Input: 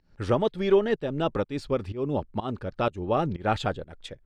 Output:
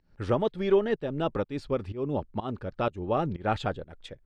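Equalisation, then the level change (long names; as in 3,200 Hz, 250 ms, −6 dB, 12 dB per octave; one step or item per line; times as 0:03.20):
high-shelf EQ 4,800 Hz −6.5 dB
−2.0 dB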